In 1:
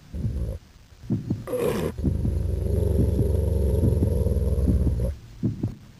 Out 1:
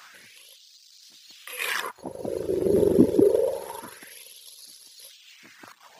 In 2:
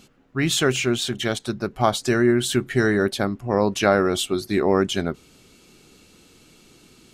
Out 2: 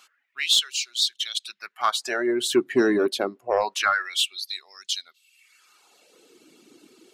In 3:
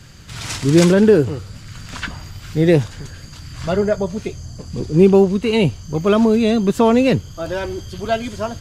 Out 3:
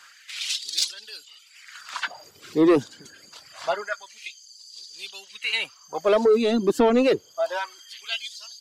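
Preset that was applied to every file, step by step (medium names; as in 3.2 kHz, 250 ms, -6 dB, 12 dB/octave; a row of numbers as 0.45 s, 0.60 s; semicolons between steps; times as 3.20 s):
dynamic bell 4.1 kHz, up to +4 dB, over -45 dBFS, Q 1.9; LFO high-pass sine 0.26 Hz 290–4300 Hz; saturation -7 dBFS; reverb removal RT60 0.98 s; normalise loudness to -24 LUFS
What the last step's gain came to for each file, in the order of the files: +7.0 dB, -2.0 dB, -3.5 dB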